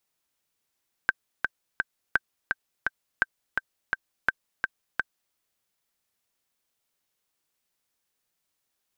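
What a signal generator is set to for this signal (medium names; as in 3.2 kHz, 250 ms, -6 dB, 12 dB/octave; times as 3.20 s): metronome 169 bpm, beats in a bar 3, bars 4, 1.56 kHz, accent 4 dB -7.5 dBFS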